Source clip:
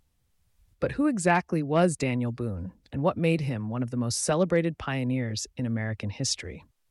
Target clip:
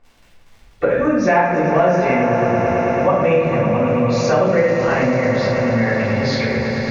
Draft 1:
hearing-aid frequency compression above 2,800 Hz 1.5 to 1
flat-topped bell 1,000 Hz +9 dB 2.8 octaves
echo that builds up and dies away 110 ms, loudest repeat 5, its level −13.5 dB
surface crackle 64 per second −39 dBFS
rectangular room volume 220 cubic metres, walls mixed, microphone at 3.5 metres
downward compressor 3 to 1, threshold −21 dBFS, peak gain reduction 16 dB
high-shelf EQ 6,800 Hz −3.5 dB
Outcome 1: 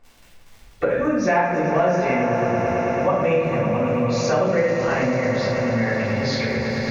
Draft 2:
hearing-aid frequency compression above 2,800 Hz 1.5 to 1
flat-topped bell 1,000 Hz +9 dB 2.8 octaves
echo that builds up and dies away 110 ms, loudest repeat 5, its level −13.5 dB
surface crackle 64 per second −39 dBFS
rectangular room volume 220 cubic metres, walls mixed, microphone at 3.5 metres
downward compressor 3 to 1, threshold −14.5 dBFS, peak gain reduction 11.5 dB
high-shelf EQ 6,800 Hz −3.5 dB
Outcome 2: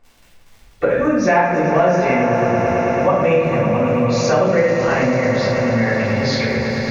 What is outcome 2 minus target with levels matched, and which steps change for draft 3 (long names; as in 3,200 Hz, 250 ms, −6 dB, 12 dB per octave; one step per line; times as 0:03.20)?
8,000 Hz band +3.5 dB
change: high-shelf EQ 6,800 Hz −11.5 dB